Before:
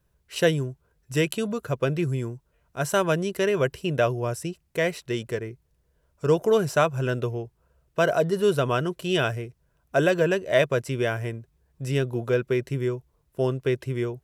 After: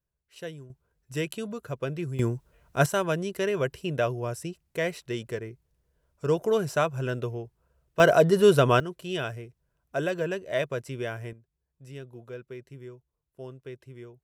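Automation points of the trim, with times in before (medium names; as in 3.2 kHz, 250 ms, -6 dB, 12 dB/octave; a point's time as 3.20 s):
-17.5 dB
from 0.70 s -7 dB
from 2.19 s +5.5 dB
from 2.86 s -4 dB
from 8.00 s +3.5 dB
from 8.80 s -7.5 dB
from 11.33 s -17 dB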